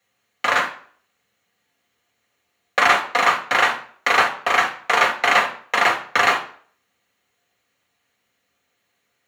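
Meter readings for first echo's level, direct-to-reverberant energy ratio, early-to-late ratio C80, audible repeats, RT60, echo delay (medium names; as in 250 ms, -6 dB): no echo, 1.5 dB, 16.0 dB, no echo, 0.50 s, no echo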